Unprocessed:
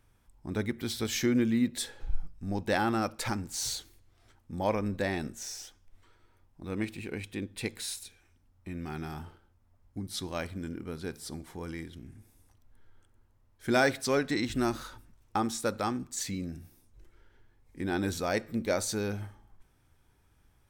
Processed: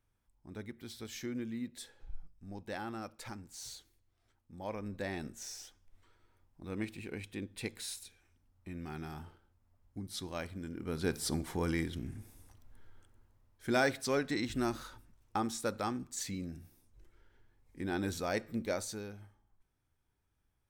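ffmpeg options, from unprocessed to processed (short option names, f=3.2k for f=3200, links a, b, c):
-af "volume=6dB,afade=t=in:st=4.6:d=0.82:silence=0.398107,afade=t=in:st=10.73:d=0.44:silence=0.281838,afade=t=out:st=12.07:d=1.62:silence=0.298538,afade=t=out:st=18.58:d=0.55:silence=0.334965"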